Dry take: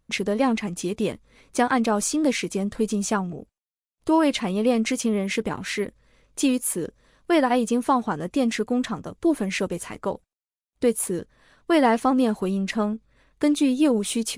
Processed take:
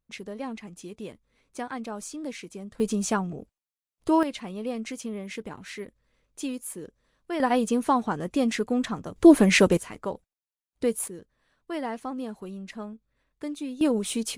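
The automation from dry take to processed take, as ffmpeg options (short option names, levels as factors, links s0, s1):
-af "asetnsamples=n=441:p=0,asendcmd='2.8 volume volume -2dB;4.23 volume volume -11dB;7.4 volume volume -2dB;9.16 volume volume 7.5dB;9.77 volume volume -4.5dB;11.08 volume volume -13.5dB;13.81 volume volume -3.5dB',volume=0.211"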